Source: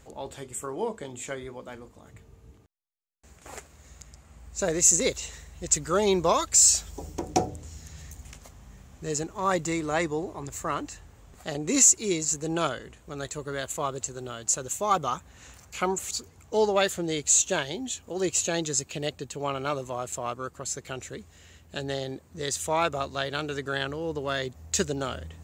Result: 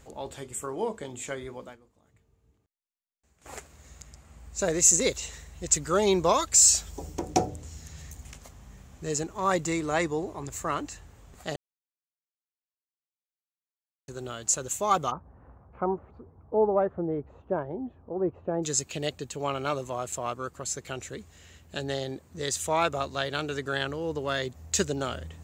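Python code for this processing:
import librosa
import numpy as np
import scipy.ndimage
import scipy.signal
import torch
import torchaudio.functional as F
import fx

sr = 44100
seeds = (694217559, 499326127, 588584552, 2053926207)

y = fx.lowpass(x, sr, hz=1100.0, slope=24, at=(15.1, 18.62), fade=0.02)
y = fx.edit(y, sr, fx.fade_down_up(start_s=1.64, length_s=1.87, db=-14.5, fade_s=0.13),
    fx.silence(start_s=11.56, length_s=2.52), tone=tone)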